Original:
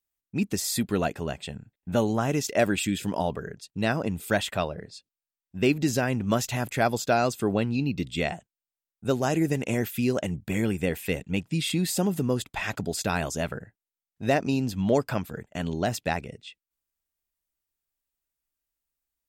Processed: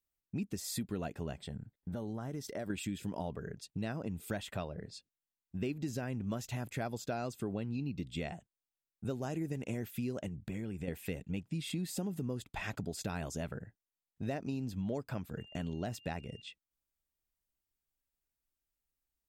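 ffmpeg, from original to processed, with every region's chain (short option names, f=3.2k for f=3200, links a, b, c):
-filter_complex "[0:a]asettb=1/sr,asplit=3[a][b][c];[a]atrim=end=1.394[d];[b]atrim=start=1.39:end=2.7,asetpts=PTS-STARTPTS,afade=t=in:d=0.004:c=qsin,afade=t=out:st=1.306:d=0.004:c=qsin,equalizer=f=2.6k:w=7.1:g=-13.5,bandreject=f=6.8k:w=6.2,acompressor=threshold=-38dB:ratio=2:attack=3.2:release=140:knee=1:detection=peak[e];[c]atrim=start=2.696[f];[d][e]acrossfade=d=0.004:c1=hsin:c2=qsin[g];[g][f]acrossfade=d=0.004:c1=qsin:c2=hsin,asettb=1/sr,asplit=3[h][i][j];[h]atrim=end=10.284[k];[i]atrim=start=10.28:end=10.88,asetpts=PTS-STARTPTS,afade=t=in:d=0.004:c=qsin,afade=t=out:st=0.596:d=0.004:c=qsin,highshelf=f=11k:g=-9.5,acompressor=threshold=-37dB:ratio=2:attack=3.2:release=140:knee=1:detection=peak[l];[j]atrim=start=10.876[m];[k][l]acrossfade=d=0.004:c1=hsin:c2=qsin[n];[n][m]acrossfade=d=0.004:c1=qsin:c2=hsin,asettb=1/sr,asplit=3[o][p][q];[o]atrim=end=15.384[r];[p]atrim=start=15.38:end=16.42,asetpts=PTS-STARTPTS,afade=t=in:d=0.004:c=qsin,afade=t=out:st=1.036:d=0.004:c=qsin,agate=range=-17dB:threshold=-58dB:ratio=16:release=100:detection=peak,aeval=exprs='val(0)+0.00398*sin(2*PI*2800*n/s)':c=same[s];[q]atrim=start=16.416[t];[r][s]acrossfade=d=0.004:c1=hsin:c2=qsin[u];[u][t]acrossfade=d=0.004:c1=qsin:c2=hsin,lowshelf=f=390:g=7,acompressor=threshold=-33dB:ratio=3,volume=-5dB"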